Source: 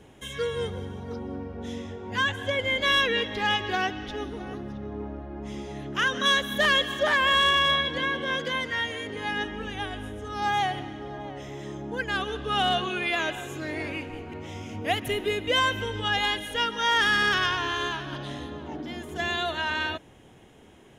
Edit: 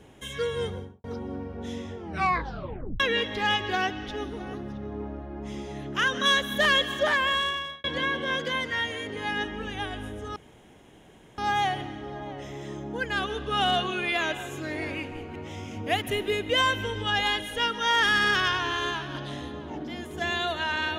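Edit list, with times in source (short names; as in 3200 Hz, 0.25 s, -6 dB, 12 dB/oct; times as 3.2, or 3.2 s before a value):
0.69–1.04 studio fade out
1.96 tape stop 1.04 s
7.03–7.84 fade out
10.36 insert room tone 1.02 s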